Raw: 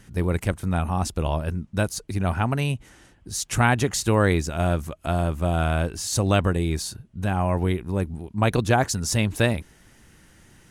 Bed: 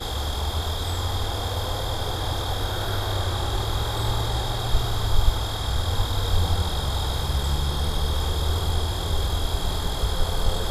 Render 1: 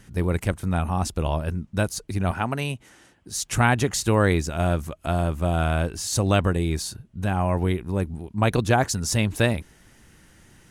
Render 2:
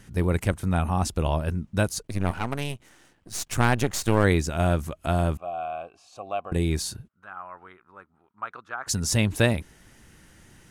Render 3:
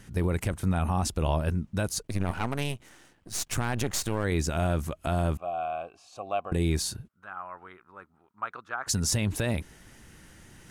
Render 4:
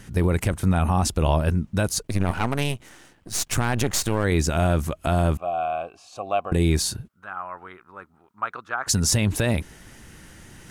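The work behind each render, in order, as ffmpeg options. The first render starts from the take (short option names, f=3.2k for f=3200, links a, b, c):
-filter_complex "[0:a]asettb=1/sr,asplit=3[a][b][c];[a]atrim=end=2.314[d];[b]atrim=start=2.31:end=3.36,asetpts=PTS-STARTPTS,afade=t=in:d=0.004:c=qsin,afade=t=out:st=1.046:d=0.004:c=qsin,highpass=f=210:p=1[e];[c]atrim=start=3.356[f];[d][e]acrossfade=d=0.004:c1=hsin:c2=qsin[g];[g][f]acrossfade=d=0.004:c1=qsin:c2=hsin"
-filter_complex "[0:a]asplit=3[a][b][c];[a]afade=t=out:st=2.01:d=0.02[d];[b]aeval=exprs='if(lt(val(0),0),0.251*val(0),val(0))':c=same,afade=t=in:st=2.01:d=0.02,afade=t=out:st=4.23:d=0.02[e];[c]afade=t=in:st=4.23:d=0.02[f];[d][e][f]amix=inputs=3:normalize=0,asettb=1/sr,asplit=3[g][h][i];[g]atrim=end=5.374[j];[h]atrim=start=5.37:end=6.52,asetpts=PTS-STARTPTS,afade=t=in:d=0.004:c=qsin,afade=t=out:st=1.146:d=0.004:c=qsin,asplit=3[k][l][m];[k]bandpass=f=730:t=q:w=8,volume=0dB[n];[l]bandpass=f=1.09k:t=q:w=8,volume=-6dB[o];[m]bandpass=f=2.44k:t=q:w=8,volume=-9dB[p];[n][o][p]amix=inputs=3:normalize=0[q];[i]atrim=start=6.516[r];[j][q]acrossfade=d=0.004:c1=hsin:c2=qsin[s];[s][r]acrossfade=d=0.004:c1=qsin:c2=hsin,asplit=3[t][u][v];[t]afade=t=out:st=7.07:d=0.02[w];[u]bandpass=f=1.3k:t=q:w=6.4,afade=t=in:st=7.07:d=0.02,afade=t=out:st=8.86:d=0.02[x];[v]afade=t=in:st=8.86:d=0.02[y];[w][x][y]amix=inputs=3:normalize=0"
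-af "alimiter=limit=-16dB:level=0:latency=1:release=37,areverse,acompressor=mode=upward:threshold=-47dB:ratio=2.5,areverse"
-af "volume=6dB"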